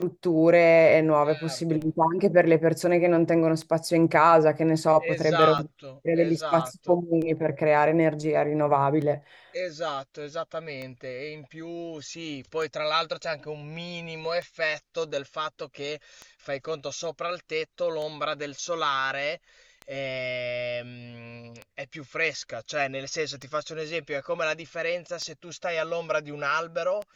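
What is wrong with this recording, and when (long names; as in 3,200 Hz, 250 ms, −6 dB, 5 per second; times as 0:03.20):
scratch tick 33 1/3 rpm −23 dBFS
0:05.58–0:05.59: drop-out 5.8 ms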